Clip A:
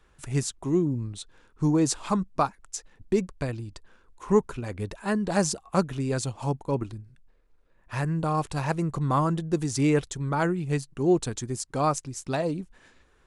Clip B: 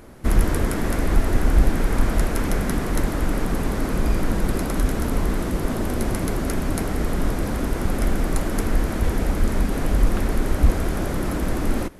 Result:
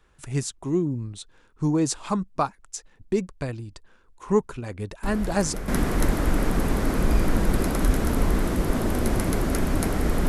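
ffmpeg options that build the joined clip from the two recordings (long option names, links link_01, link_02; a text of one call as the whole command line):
ffmpeg -i cue0.wav -i cue1.wav -filter_complex "[1:a]asplit=2[link_01][link_02];[0:a]apad=whole_dur=10.28,atrim=end=10.28,atrim=end=5.682[link_03];[link_02]atrim=start=2.628:end=7.23[link_04];[link_01]atrim=start=1.98:end=2.63,asetpts=PTS-STARTPTS,volume=-11dB,afade=type=in:duration=0.004:curve=hsin,afade=type=out:start_time=0.646:duration=0.004:curve=hsin,adelay=5030[link_05];[link_03][link_04]acrossfade=duration=0.004:curve1=hsin:curve2=hsin[link_06];[link_06][link_05]amix=inputs=2:normalize=0" out.wav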